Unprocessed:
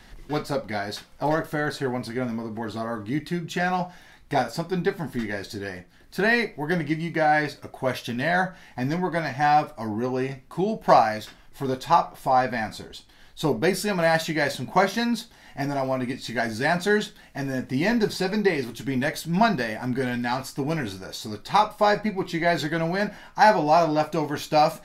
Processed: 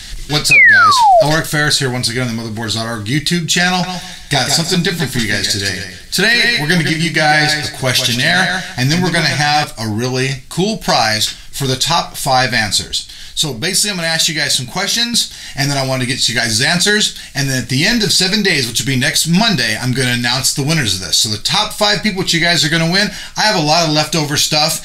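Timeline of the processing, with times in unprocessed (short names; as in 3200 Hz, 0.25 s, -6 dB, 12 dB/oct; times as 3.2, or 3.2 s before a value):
0.51–1.23 painted sound fall 600–2600 Hz -14 dBFS
3.68–9.64 feedback echo 0.152 s, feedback 22%, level -8 dB
12.94–15.14 compressor 1.5:1, threshold -40 dBFS
whole clip: ten-band EQ 250 Hz -8 dB, 500 Hz -9 dB, 1000 Hz -10 dB, 4000 Hz +7 dB, 8000 Hz +11 dB; maximiser +18.5 dB; gain -1 dB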